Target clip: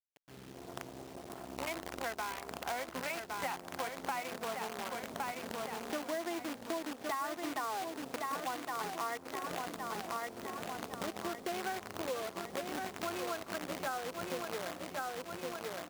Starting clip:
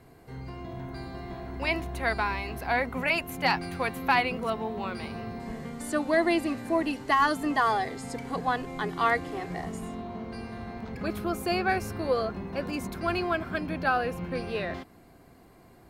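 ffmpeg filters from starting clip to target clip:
-af "adynamicsmooth=sensitivity=1.5:basefreq=2.7k,afwtdn=0.0158,equalizer=f=5.8k:w=0.53:g=-12.5,bandreject=f=1.7k:w=16,acrusher=bits=6:dc=4:mix=0:aa=0.000001,highpass=f=490:p=1,aecho=1:1:1113|2226|3339|4452|5565:0.398|0.159|0.0637|0.0255|0.0102,acompressor=threshold=-38dB:ratio=6,volume=2.5dB"

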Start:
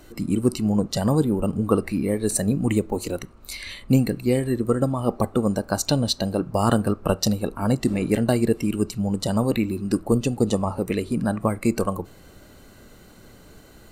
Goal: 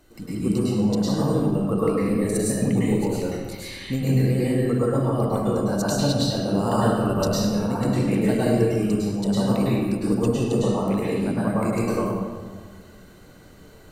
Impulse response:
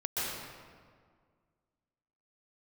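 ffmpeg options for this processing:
-filter_complex "[0:a]asettb=1/sr,asplit=3[a][b][c];[a]atrim=end=0.954[d];[b]atrim=start=0.95:end=1.54,asetpts=PTS-STARTPTS,afade=t=in:d=0.004:c=qsin,afade=t=out:st=0.586:d=0.004:c=qsin,agate=range=-33dB:threshold=-18dB:ratio=3:detection=peak[e];[c]atrim=start=1.536[f];[d][e]acrossfade=d=0.004:c1=hsin:c2=qsin[g];[g][f]acrossfade=d=0.004:c1=qsin:c2=hsin[h];[1:a]atrim=start_sample=2205,asetrate=52920,aresample=44100[i];[h][i]afir=irnorm=-1:irlink=0,volume=-5dB"

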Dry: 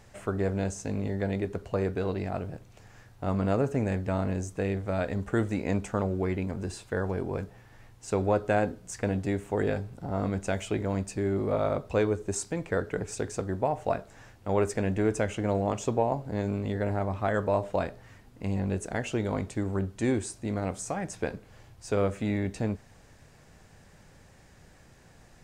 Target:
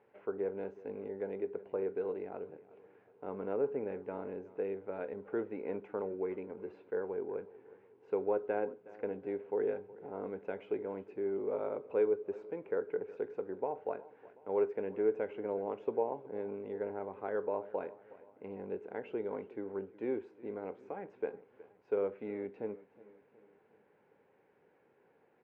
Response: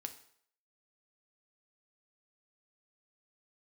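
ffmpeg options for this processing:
-af "highpass=400,equalizer=f=430:t=q:w=4:g=8,equalizer=f=660:t=q:w=4:g=-9,equalizer=f=1.2k:t=q:w=4:g=-9,equalizer=f=1.8k:t=q:w=4:g=-10,lowpass=f=2k:w=0.5412,lowpass=f=2k:w=1.3066,aecho=1:1:367|734|1101|1468:0.106|0.0519|0.0254|0.0125,volume=-5.5dB"

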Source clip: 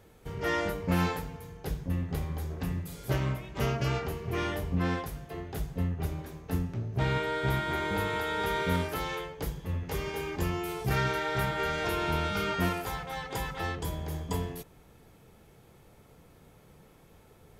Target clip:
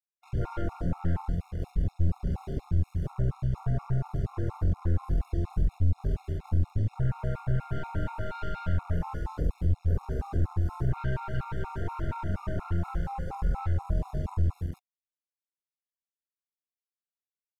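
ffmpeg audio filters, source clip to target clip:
-filter_complex "[0:a]afftfilt=real='re':imag='-im':win_size=4096:overlap=0.75,asplit=2[a][b];[b]alimiter=level_in=7dB:limit=-24dB:level=0:latency=1:release=144,volume=-7dB,volume=1dB[c];[a][c]amix=inputs=2:normalize=0,afftfilt=real='re*(1-between(b*sr/4096,1700,4800))':imag='im*(1-between(b*sr/4096,1700,4800))':win_size=4096:overlap=0.75,aeval=exprs='sgn(val(0))*max(abs(val(0))-0.00355,0)':c=same,aecho=1:1:69.97|177.8:0.398|0.398,afwtdn=0.0112,highshelf=f=3.8k:g=9.5,acrusher=bits=7:mix=0:aa=0.000001,aeval=exprs='(tanh(35.5*val(0)+0.35)-tanh(0.35))/35.5':c=same,acompressor=threshold=-37dB:ratio=2.5,aemphasis=mode=reproduction:type=bsi,afftfilt=real='re*gt(sin(2*PI*4.2*pts/sr)*(1-2*mod(floor(b*sr/1024/710),2)),0)':imag='im*gt(sin(2*PI*4.2*pts/sr)*(1-2*mod(floor(b*sr/1024/710),2)),0)':win_size=1024:overlap=0.75,volume=4dB"

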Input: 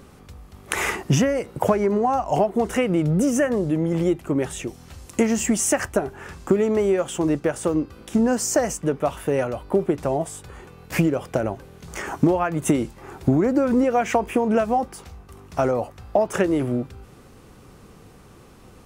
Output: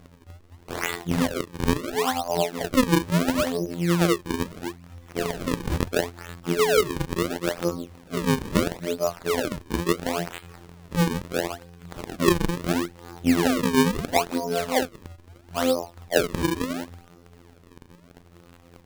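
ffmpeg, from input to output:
-af "afftfilt=real='re':imag='-im':win_size=2048:overlap=0.75,afftfilt=real='hypot(re,im)*cos(PI*b)':imag='0':win_size=2048:overlap=0.75,acrusher=samples=37:mix=1:aa=0.000001:lfo=1:lforange=59.2:lforate=0.74,volume=4.5dB"

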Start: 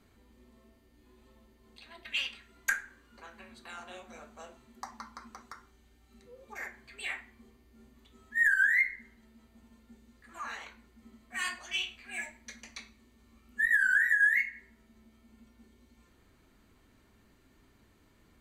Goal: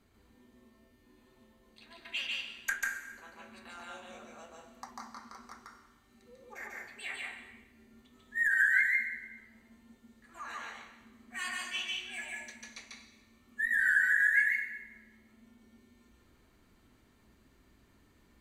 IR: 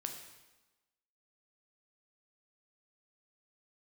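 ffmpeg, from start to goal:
-filter_complex "[0:a]asplit=2[a][b];[1:a]atrim=start_sample=2205,adelay=144[c];[b][c]afir=irnorm=-1:irlink=0,volume=1.5dB[d];[a][d]amix=inputs=2:normalize=0,volume=-4dB"

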